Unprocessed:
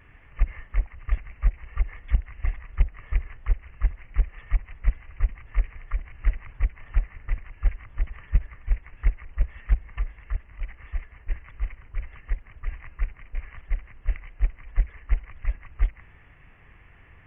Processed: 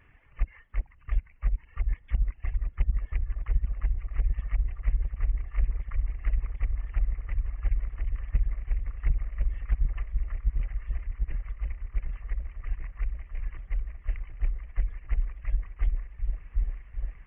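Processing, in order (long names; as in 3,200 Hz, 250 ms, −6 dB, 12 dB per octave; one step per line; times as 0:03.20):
reverb reduction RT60 1.1 s
echo whose low-pass opens from repeat to repeat 748 ms, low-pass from 200 Hz, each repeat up 1 octave, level 0 dB
level −5.5 dB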